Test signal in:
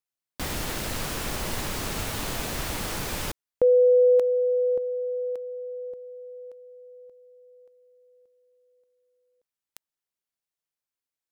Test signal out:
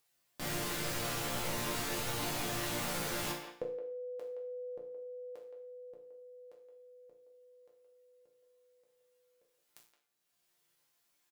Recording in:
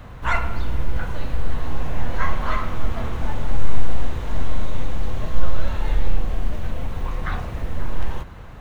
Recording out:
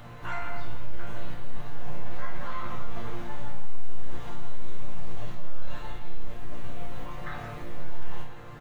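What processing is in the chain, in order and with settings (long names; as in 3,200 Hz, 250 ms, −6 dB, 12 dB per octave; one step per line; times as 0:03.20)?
low-shelf EQ 64 Hz −8 dB
upward compression 1.5 to 1, threshold −26 dBFS
brickwall limiter −18.5 dBFS
downward compressor, threshold −24 dBFS
resonators tuned to a chord A#2 major, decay 0.49 s
far-end echo of a speakerphone 170 ms, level −9 dB
level +11 dB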